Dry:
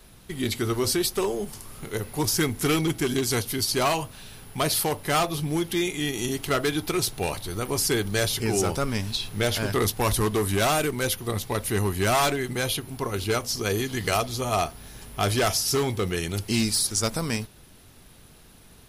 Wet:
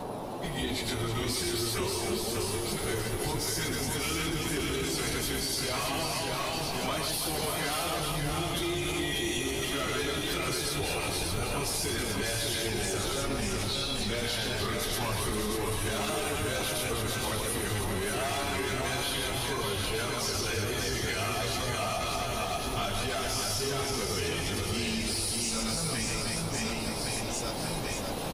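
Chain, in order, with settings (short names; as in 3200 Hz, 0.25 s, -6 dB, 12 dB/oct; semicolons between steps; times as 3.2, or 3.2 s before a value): octaver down 2 oct, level -5 dB; bell 3100 Hz +6 dB 2.3 oct; reverse bouncing-ball echo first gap 80 ms, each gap 1.6×, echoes 5; AGC gain up to 11.5 dB; dynamic EQ 9400 Hz, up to +4 dB, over -36 dBFS, Q 3.4; plain phase-vocoder stretch 1.5×; soft clip -3 dBFS, distortion -29 dB; limiter -14.5 dBFS, peak gain reduction 9.5 dB; band noise 110–890 Hz -37 dBFS; compressor 6:1, threshold -30 dBFS, peak gain reduction 11 dB; echo 0.589 s -5 dB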